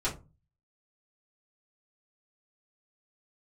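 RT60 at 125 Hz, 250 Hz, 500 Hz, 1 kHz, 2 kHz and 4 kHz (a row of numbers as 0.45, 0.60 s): 0.55, 0.45, 0.30, 0.25, 0.20, 0.15 s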